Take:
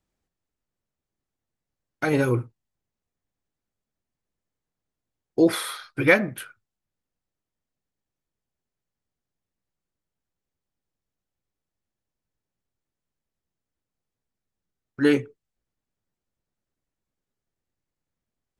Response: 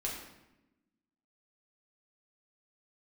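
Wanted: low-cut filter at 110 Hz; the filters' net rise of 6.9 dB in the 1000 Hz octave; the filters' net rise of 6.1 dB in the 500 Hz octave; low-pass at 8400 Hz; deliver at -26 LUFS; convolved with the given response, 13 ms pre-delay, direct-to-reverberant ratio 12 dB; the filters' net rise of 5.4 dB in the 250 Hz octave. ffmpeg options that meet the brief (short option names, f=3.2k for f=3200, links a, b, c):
-filter_complex "[0:a]highpass=110,lowpass=8.4k,equalizer=f=250:t=o:g=5,equalizer=f=500:t=o:g=4,equalizer=f=1k:t=o:g=8,asplit=2[a][b];[1:a]atrim=start_sample=2205,adelay=13[c];[b][c]afir=irnorm=-1:irlink=0,volume=-14.5dB[d];[a][d]amix=inputs=2:normalize=0,volume=-8dB"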